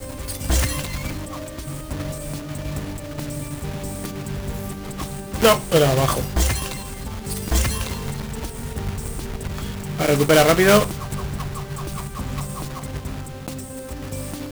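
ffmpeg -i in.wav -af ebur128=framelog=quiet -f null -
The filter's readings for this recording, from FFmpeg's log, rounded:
Integrated loudness:
  I:         -23.4 LUFS
  Threshold: -33.4 LUFS
Loudness range:
  LRA:        10.3 LU
  Threshold: -42.8 LUFS
  LRA low:   -30.2 LUFS
  LRA high:  -19.9 LUFS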